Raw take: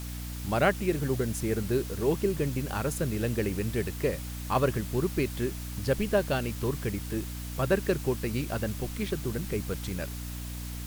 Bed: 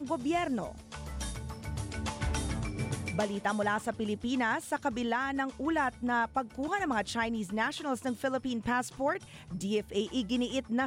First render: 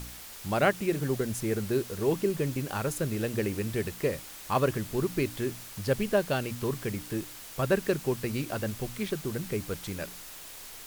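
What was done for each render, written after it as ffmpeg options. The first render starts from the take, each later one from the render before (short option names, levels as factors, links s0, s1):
-af "bandreject=f=60:t=h:w=4,bandreject=f=120:t=h:w=4,bandreject=f=180:t=h:w=4,bandreject=f=240:t=h:w=4,bandreject=f=300:t=h:w=4"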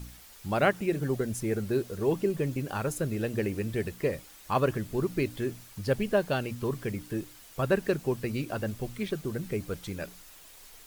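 -af "afftdn=nr=8:nf=-45"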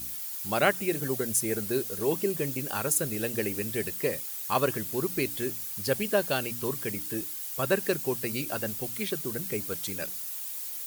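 -af "highpass=f=190:p=1,aemphasis=mode=production:type=75kf"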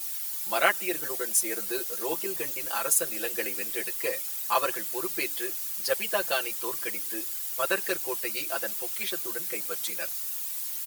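-af "highpass=570,aecho=1:1:5.9:0.99"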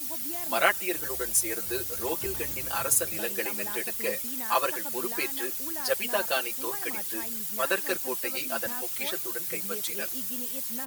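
-filter_complex "[1:a]volume=0.266[s0];[0:a][s0]amix=inputs=2:normalize=0"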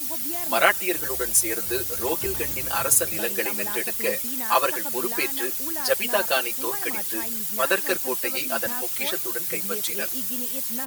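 -af "volume=1.78,alimiter=limit=0.708:level=0:latency=1"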